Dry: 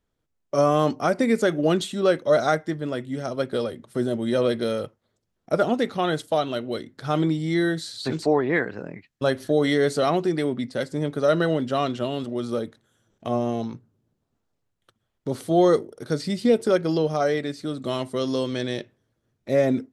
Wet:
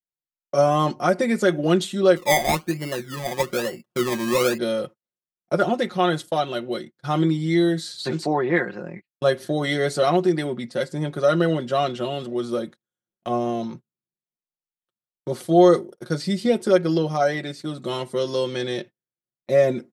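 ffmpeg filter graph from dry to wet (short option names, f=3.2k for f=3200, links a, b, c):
-filter_complex "[0:a]asettb=1/sr,asplit=3[a][b][c];[a]atrim=end=2.164[d];[b]atrim=start=2.16:end=4.58,asetpts=PTS-STARTPTS,afade=t=in:d=0.004:c=qsin,afade=t=out:st=2.416:d=0.004:c=qsin,highshelf=f=3.7k:g=-11.5,acrusher=samples=25:mix=1:aa=0.000001:lfo=1:lforange=15:lforate=1.1[e];[c]atrim=start=4.576[f];[d][e]acrossfade=d=0.004:c1=hsin:c2=qsin[g];[g][f]acrossfade=d=0.004:c1=qsin:c2=hsin,agate=range=-28dB:threshold=-38dB:ratio=16:detection=peak,lowshelf=f=63:g=-10,aecho=1:1:5.6:0.7"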